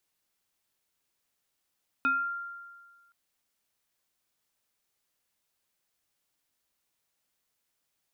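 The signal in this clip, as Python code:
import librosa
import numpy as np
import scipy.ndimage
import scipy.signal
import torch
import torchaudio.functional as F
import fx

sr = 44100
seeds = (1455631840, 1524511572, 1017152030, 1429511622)

y = fx.fm2(sr, length_s=1.07, level_db=-21.5, carrier_hz=1390.0, ratio=0.81, index=0.67, index_s=0.44, decay_s=1.56, shape='exponential')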